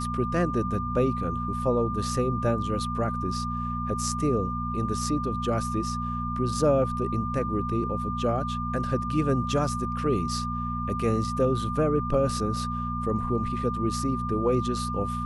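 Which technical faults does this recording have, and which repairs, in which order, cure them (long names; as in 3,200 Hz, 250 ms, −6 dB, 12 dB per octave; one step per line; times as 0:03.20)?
mains hum 60 Hz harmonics 4 −32 dBFS
whistle 1,200 Hz −31 dBFS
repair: hum removal 60 Hz, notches 4
notch filter 1,200 Hz, Q 30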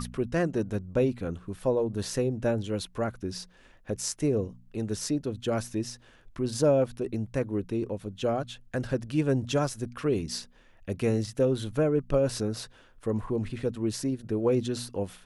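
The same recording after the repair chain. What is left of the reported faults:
none of them is left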